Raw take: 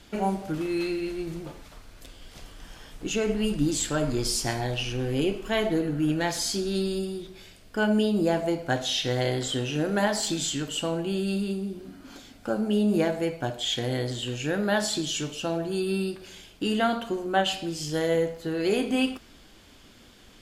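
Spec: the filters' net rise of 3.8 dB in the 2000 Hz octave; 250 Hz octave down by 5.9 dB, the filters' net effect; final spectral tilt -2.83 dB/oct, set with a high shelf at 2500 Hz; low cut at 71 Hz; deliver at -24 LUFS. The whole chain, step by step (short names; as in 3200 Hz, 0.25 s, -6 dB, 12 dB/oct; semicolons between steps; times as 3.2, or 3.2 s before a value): HPF 71 Hz; bell 250 Hz -8.5 dB; bell 2000 Hz +3.5 dB; high shelf 2500 Hz +3.5 dB; gain +3.5 dB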